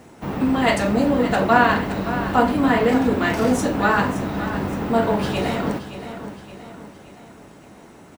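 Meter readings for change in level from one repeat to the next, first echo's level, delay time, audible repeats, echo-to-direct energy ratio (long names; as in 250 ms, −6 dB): −6.5 dB, −12.0 dB, 570 ms, 4, −11.0 dB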